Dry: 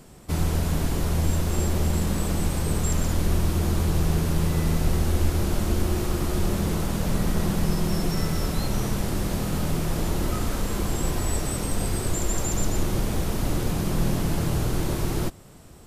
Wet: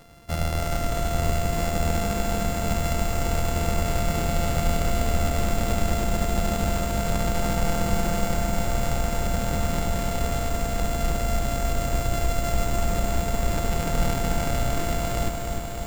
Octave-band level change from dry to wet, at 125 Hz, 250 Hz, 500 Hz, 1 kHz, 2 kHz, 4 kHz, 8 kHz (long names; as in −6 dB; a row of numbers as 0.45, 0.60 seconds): −2.0, −2.5, +3.5, +6.0, +3.5, +1.0, −0.5 decibels